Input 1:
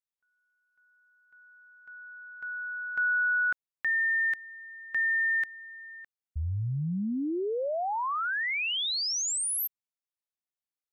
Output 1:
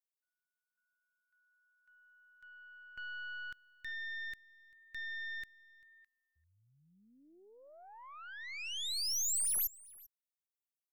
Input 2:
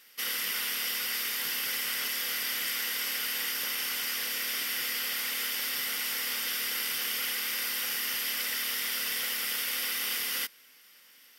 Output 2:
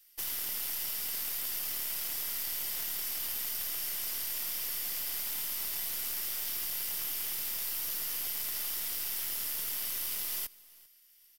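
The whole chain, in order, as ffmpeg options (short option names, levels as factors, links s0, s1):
-filter_complex "[0:a]aderivative,aeval=exprs='0.133*(cos(1*acos(clip(val(0)/0.133,-1,1)))-cos(1*PI/2))+0.0133*(cos(3*acos(clip(val(0)/0.133,-1,1)))-cos(3*PI/2))+0.00841*(cos(6*acos(clip(val(0)/0.133,-1,1)))-cos(6*PI/2))+0.00944*(cos(7*acos(clip(val(0)/0.133,-1,1)))-cos(7*PI/2))':c=same,acompressor=threshold=0.0112:ratio=16:attack=31:release=99:knee=6:detection=peak,aeval=exprs='0.119*sin(PI/2*4.47*val(0)/0.119)':c=same,asplit=2[s0][s1];[s1]aecho=0:1:393:0.0708[s2];[s0][s2]amix=inputs=2:normalize=0,volume=0.355"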